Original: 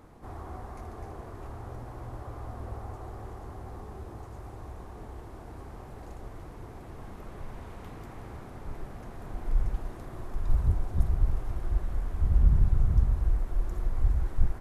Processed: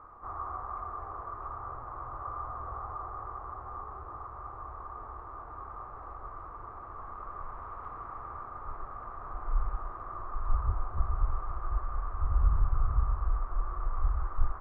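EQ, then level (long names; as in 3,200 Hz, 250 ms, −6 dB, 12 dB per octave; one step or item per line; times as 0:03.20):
low-pass with resonance 1,200 Hz, resonance Q 12
parametric band 190 Hz −13 dB 1.7 octaves
−2.5 dB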